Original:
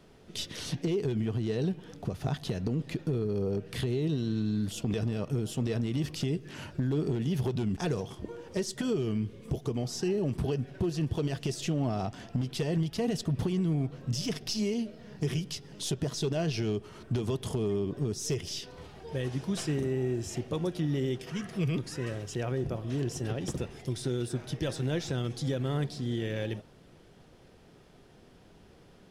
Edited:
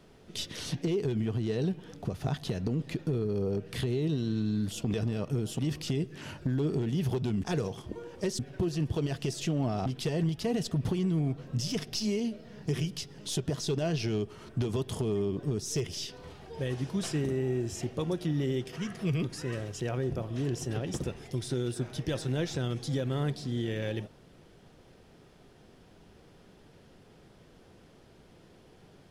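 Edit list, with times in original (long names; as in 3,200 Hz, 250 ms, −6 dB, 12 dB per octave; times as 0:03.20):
0:05.59–0:05.92: remove
0:08.72–0:10.60: remove
0:12.07–0:12.40: remove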